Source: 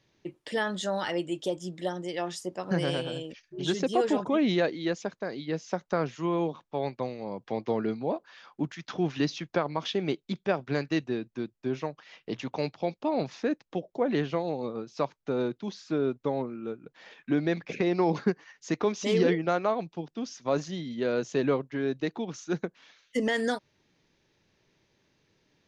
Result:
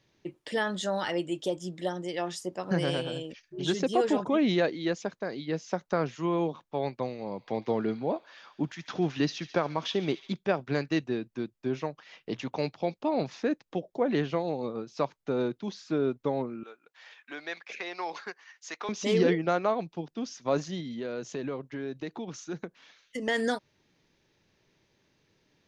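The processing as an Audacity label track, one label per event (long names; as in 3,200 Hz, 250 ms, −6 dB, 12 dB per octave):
7.050000	10.330000	delay with a high-pass on its return 71 ms, feedback 73%, high-pass 2,000 Hz, level −13 dB
16.630000	18.890000	high-pass filter 960 Hz
20.800000	23.280000	downward compressor 2.5 to 1, threshold −34 dBFS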